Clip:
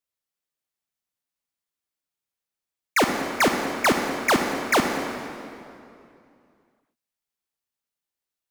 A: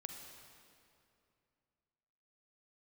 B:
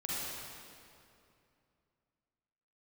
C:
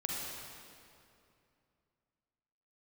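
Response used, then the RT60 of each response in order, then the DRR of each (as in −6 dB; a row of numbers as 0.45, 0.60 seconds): A; 2.6, 2.6, 2.6 seconds; 3.5, −7.5, −3.0 decibels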